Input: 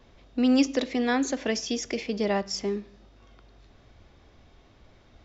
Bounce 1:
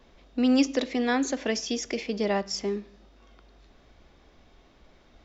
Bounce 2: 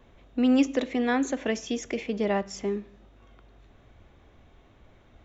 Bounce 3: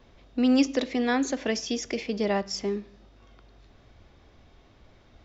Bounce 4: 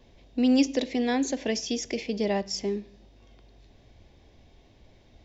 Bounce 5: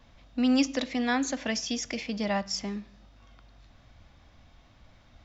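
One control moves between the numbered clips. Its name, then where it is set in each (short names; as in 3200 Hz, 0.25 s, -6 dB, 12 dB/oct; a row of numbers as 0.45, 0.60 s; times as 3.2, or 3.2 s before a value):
bell, frequency: 100, 4900, 15000, 1300, 400 Hz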